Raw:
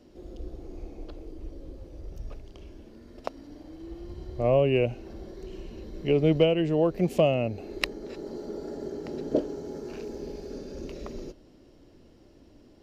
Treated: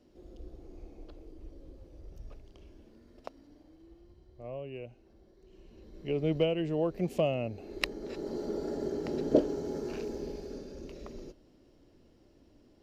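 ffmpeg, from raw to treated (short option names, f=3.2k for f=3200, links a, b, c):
-af "volume=12.5dB,afade=t=out:st=2.9:d=1.32:silence=0.281838,afade=t=in:st=5.43:d=1.01:silence=0.237137,afade=t=in:st=7.6:d=0.82:silence=0.398107,afade=t=out:st=9.83:d=0.96:silence=0.398107"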